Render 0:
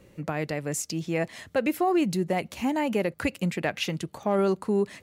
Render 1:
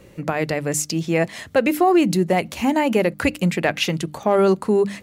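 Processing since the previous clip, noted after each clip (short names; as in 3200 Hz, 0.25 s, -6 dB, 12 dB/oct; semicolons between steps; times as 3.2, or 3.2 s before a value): notches 50/100/150/200/250/300 Hz; gain +8 dB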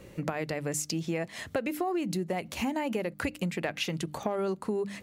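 compressor 6:1, threshold -26 dBFS, peak gain reduction 13.5 dB; gain -2.5 dB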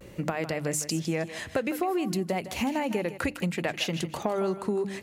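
vibrato 0.57 Hz 42 cents; thinning echo 0.157 s, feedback 29%, high-pass 420 Hz, level -11 dB; gain +2.5 dB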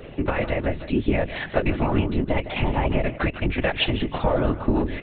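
monotone LPC vocoder at 8 kHz 290 Hz; whisperiser; gain +7.5 dB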